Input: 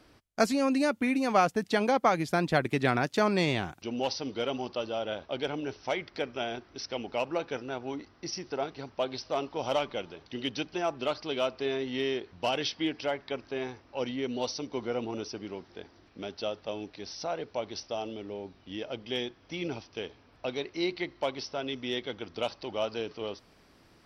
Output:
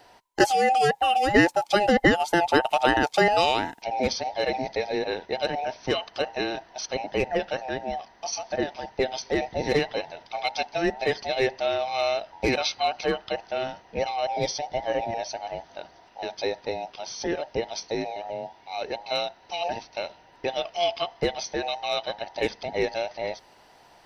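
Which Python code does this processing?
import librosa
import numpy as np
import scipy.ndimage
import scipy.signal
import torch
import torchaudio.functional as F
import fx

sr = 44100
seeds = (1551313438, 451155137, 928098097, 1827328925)

y = fx.band_invert(x, sr, width_hz=1000)
y = F.gain(torch.from_numpy(y), 5.5).numpy()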